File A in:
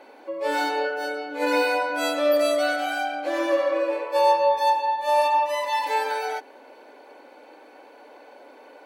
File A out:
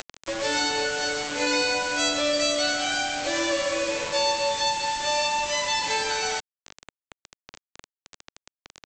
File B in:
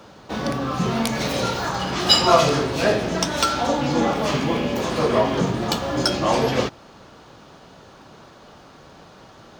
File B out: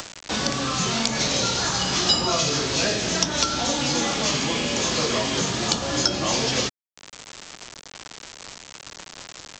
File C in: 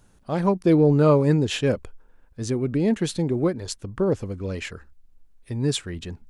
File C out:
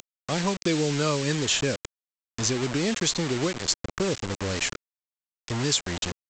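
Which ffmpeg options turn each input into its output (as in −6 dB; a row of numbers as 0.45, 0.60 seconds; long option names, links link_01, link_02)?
-filter_complex "[0:a]acompressor=mode=upward:threshold=-33dB:ratio=2.5,crystalizer=i=5.5:c=0,aresample=16000,acrusher=bits=4:mix=0:aa=0.000001,aresample=44100,acrossover=split=410|1500|4900[link_01][link_02][link_03][link_04];[link_01]acompressor=threshold=-27dB:ratio=4[link_05];[link_02]acompressor=threshold=-31dB:ratio=4[link_06];[link_03]acompressor=threshold=-28dB:ratio=4[link_07];[link_04]acompressor=threshold=-27dB:ratio=4[link_08];[link_05][link_06][link_07][link_08]amix=inputs=4:normalize=0"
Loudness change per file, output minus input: −1.0, −1.0, −3.5 LU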